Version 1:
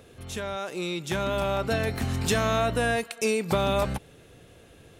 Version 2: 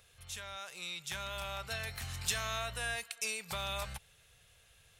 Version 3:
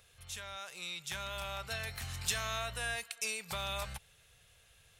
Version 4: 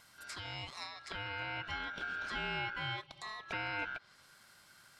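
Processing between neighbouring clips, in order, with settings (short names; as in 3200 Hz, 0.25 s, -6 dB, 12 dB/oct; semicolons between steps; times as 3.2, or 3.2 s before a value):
passive tone stack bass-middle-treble 10-0-10; gain -3 dB
nothing audible
treble ducked by the level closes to 1300 Hz, closed at -37 dBFS; ring modulator 1500 Hz; gain +5.5 dB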